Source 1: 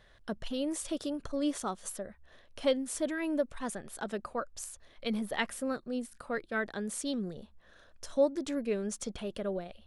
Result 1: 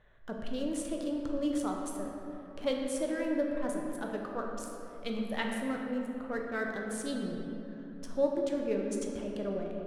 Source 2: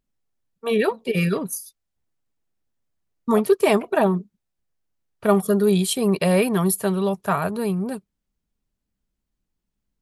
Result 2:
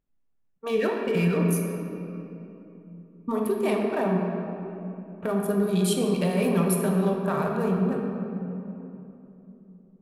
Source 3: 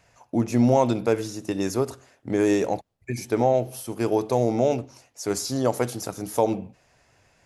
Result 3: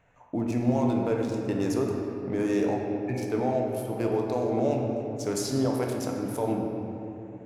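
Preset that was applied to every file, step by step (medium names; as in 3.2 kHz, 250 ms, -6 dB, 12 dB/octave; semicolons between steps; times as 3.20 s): local Wiener filter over 9 samples; peak limiter -16.5 dBFS; simulated room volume 150 m³, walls hard, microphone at 0.43 m; trim -3 dB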